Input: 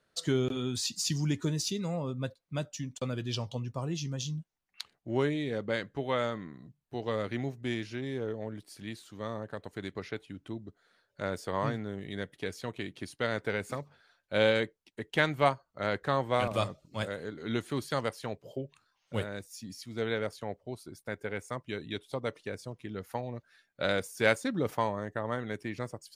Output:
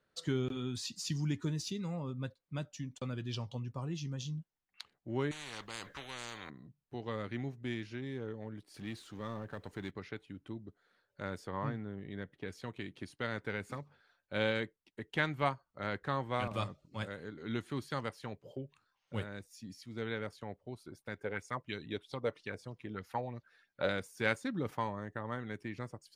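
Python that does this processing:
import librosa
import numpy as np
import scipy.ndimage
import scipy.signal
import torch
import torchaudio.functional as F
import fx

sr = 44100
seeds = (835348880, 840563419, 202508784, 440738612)

y = fx.spectral_comp(x, sr, ratio=10.0, at=(5.31, 6.5))
y = fx.law_mismatch(y, sr, coded='mu', at=(8.74, 9.91))
y = fx.lowpass(y, sr, hz=2000.0, slope=6, at=(11.47, 12.48))
y = fx.bell_lfo(y, sr, hz=3.1, low_hz=460.0, high_hz=5600.0, db=11, at=(20.84, 23.88), fade=0.02)
y = fx.high_shelf(y, sr, hz=4500.0, db=-8.5)
y = fx.notch(y, sr, hz=660.0, q=13.0)
y = fx.dynamic_eq(y, sr, hz=520.0, q=1.3, threshold_db=-44.0, ratio=4.0, max_db=-5)
y = F.gain(torch.from_numpy(y), -3.5).numpy()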